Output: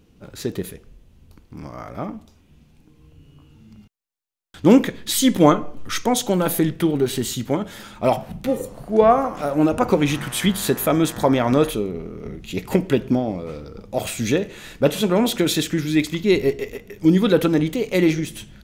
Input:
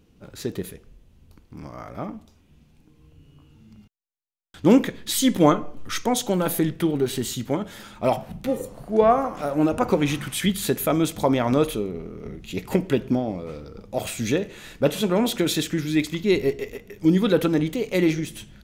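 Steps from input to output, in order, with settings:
0:10.14–0:11.69: hum with harmonics 120 Hz, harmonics 16, −42 dBFS −1 dB per octave
level +3 dB

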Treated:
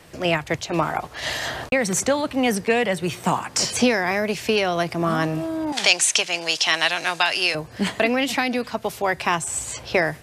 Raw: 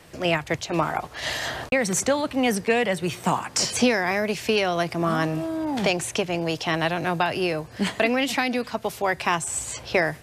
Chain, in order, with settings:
0:05.72–0:07.55: meter weighting curve ITU-R 468
level +1.5 dB

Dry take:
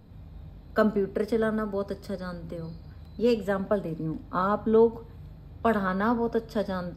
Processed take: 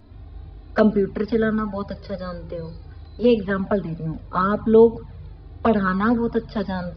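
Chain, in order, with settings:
downsampling to 11,025 Hz
flanger swept by the level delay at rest 3.2 ms, full sweep at −18.5 dBFS
level +8 dB

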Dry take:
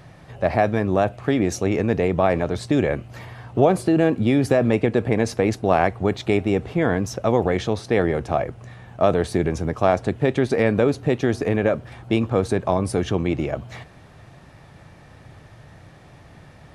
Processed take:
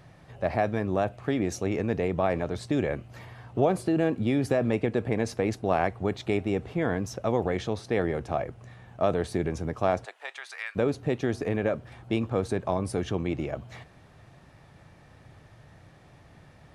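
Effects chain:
0:10.04–0:10.75: high-pass filter 670 Hz → 1,400 Hz 24 dB per octave
level −7 dB

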